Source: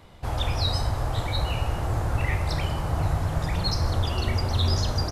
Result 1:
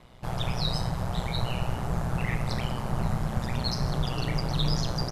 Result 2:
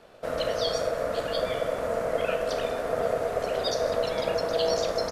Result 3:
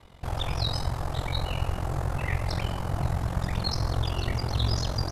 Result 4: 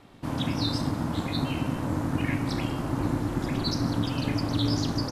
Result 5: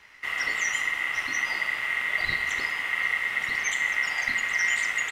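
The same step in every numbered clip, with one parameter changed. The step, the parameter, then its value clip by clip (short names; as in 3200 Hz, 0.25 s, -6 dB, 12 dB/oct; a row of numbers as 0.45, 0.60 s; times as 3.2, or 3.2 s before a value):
ring modulator, frequency: 61, 570, 22, 200, 2000 Hz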